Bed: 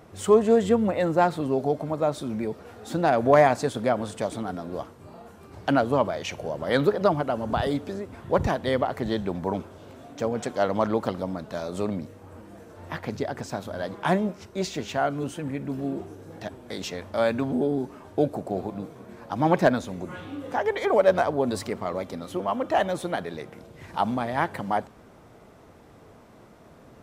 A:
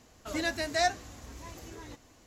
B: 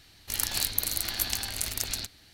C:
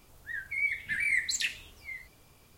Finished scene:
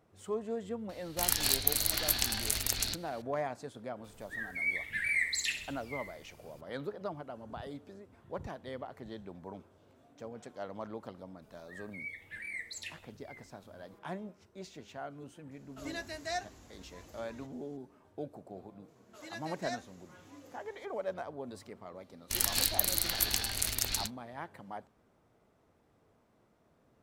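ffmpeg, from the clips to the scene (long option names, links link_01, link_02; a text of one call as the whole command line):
ffmpeg -i bed.wav -i cue0.wav -i cue1.wav -i cue2.wav -filter_complex "[2:a]asplit=2[link_01][link_02];[3:a]asplit=2[link_03][link_04];[1:a]asplit=2[link_05][link_06];[0:a]volume=-18dB[link_07];[link_03]aecho=1:1:65|130|195|260|325|390:0.335|0.167|0.0837|0.0419|0.0209|0.0105[link_08];[link_06]highpass=360[link_09];[link_02]agate=range=-19dB:threshold=-46dB:ratio=16:release=100:detection=peak[link_10];[link_01]atrim=end=2.33,asetpts=PTS-STARTPTS,volume=-0.5dB,afade=type=in:duration=0.004:curve=hsin,afade=type=out:start_time=2.326:duration=0.004:curve=hsin,adelay=890[link_11];[link_08]atrim=end=2.57,asetpts=PTS-STARTPTS,volume=-3dB,afade=type=in:duration=0.004:curve=hsin,afade=type=out:start_time=2.566:duration=0.004:curve=hsin,adelay=4040[link_12];[link_04]atrim=end=2.57,asetpts=PTS-STARTPTS,volume=-13dB,afade=type=in:duration=0.004:curve=hsin,afade=type=out:start_time=2.566:duration=0.004:curve=hsin,adelay=11420[link_13];[link_05]atrim=end=2.26,asetpts=PTS-STARTPTS,volume=-9.5dB,afade=type=in:duration=0.004:curve=hsin,afade=type=out:start_time=2.256:duration=0.004:curve=hsin,adelay=15510[link_14];[link_09]atrim=end=2.26,asetpts=PTS-STARTPTS,volume=-13.5dB,afade=type=in:duration=0.004:curve=hsin,afade=type=out:start_time=2.256:duration=0.004:curve=hsin,adelay=18880[link_15];[link_10]atrim=end=2.33,asetpts=PTS-STARTPTS,volume=-1dB,afade=type=in:duration=0.004:curve=hsin,afade=type=out:start_time=2.326:duration=0.004:curve=hsin,adelay=22010[link_16];[link_07][link_11][link_12][link_13][link_14][link_15][link_16]amix=inputs=7:normalize=0" out.wav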